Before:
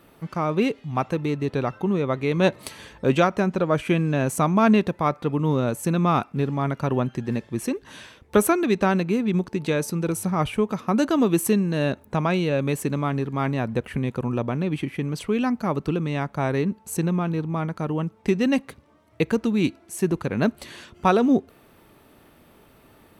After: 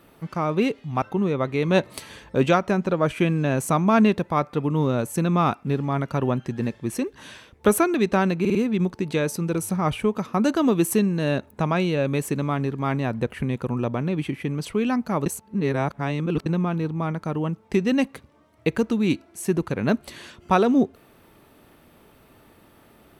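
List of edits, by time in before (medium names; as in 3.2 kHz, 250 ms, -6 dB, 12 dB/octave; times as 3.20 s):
1.02–1.71 s: delete
9.09 s: stutter 0.05 s, 4 plays
15.80–17.00 s: reverse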